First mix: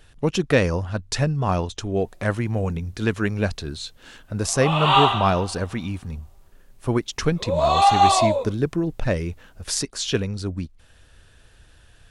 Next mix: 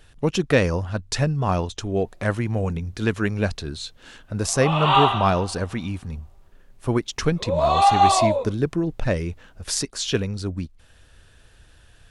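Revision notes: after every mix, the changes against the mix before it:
background: add high-shelf EQ 5,200 Hz −10 dB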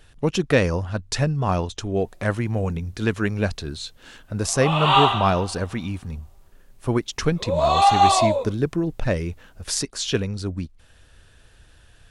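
background: add high-shelf EQ 5,200 Hz +10 dB

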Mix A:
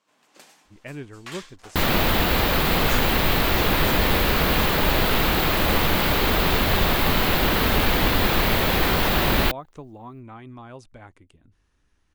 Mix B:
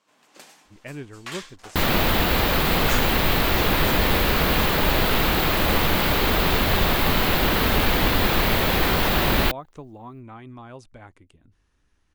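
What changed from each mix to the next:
first sound +3.0 dB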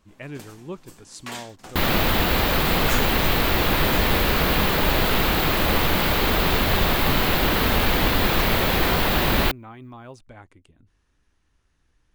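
speech: entry −0.65 s
first sound: remove meter weighting curve A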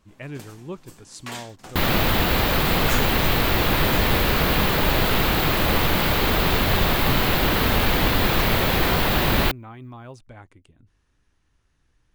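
master: add parametric band 120 Hz +4 dB 0.57 octaves

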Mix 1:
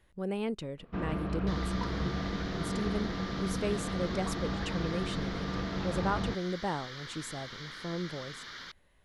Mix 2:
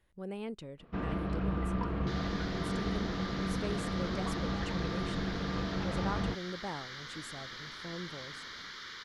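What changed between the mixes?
speech −6.5 dB
second sound: entry +0.60 s

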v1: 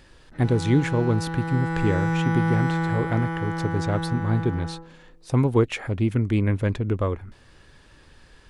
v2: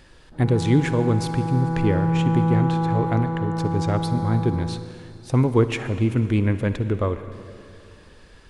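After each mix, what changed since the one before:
background: add low-pass filter 1,100 Hz 24 dB per octave
reverb: on, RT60 2.9 s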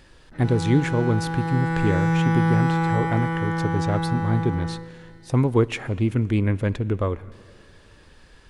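speech: send −10.0 dB
background: remove low-pass filter 1,100 Hz 24 dB per octave

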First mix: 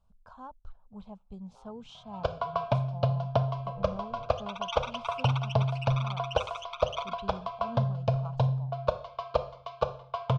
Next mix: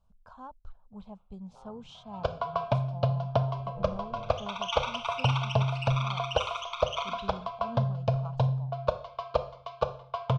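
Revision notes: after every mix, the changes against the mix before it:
second sound: send on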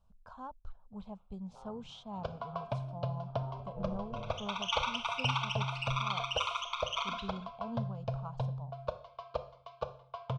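first sound −9.5 dB

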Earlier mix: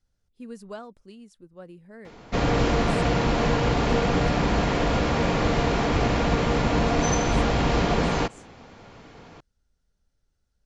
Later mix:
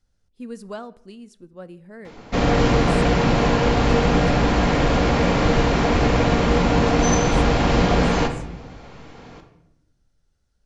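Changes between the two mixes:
speech +4.0 dB
reverb: on, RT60 0.85 s

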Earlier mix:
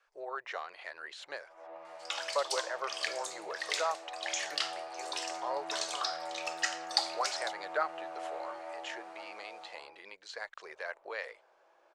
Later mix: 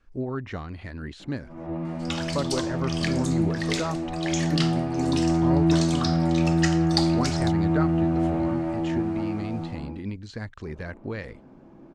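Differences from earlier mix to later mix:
first sound +7.0 dB
second sound +3.5 dB
master: remove inverse Chebyshev high-pass filter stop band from 270 Hz, stop band 40 dB

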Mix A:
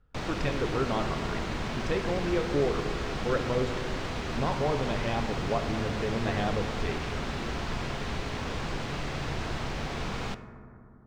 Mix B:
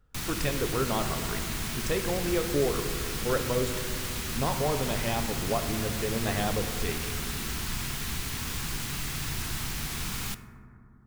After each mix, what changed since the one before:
background: add parametric band 560 Hz −14.5 dB 1.3 octaves
master: remove high-frequency loss of the air 150 metres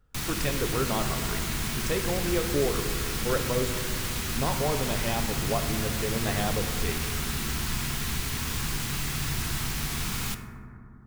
background: send +6.5 dB

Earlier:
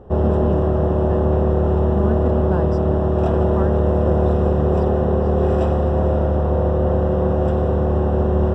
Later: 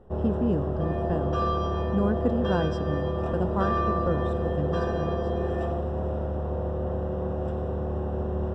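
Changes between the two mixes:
first sound −11.5 dB
second sound: unmuted

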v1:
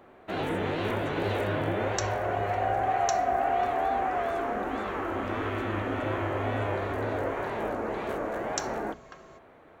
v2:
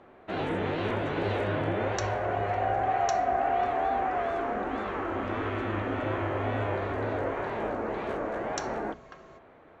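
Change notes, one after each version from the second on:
master: add high-frequency loss of the air 81 metres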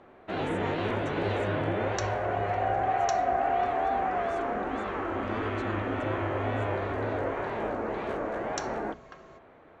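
speech +10.5 dB

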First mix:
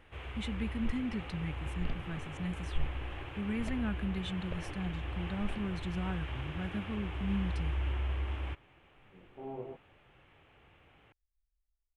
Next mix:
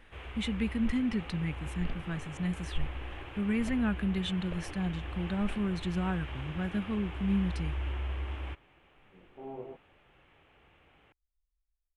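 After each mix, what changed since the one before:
speech +6.0 dB
master: add parametric band 110 Hz −5 dB 0.76 octaves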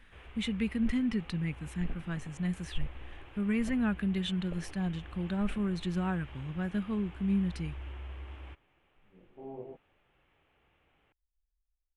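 first sound −8.0 dB
second sound: add moving average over 27 samples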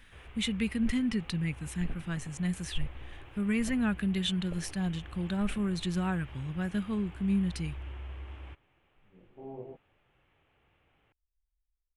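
speech: add high-shelf EQ 3,400 Hz +10.5 dB
master: add parametric band 110 Hz +5 dB 0.76 octaves

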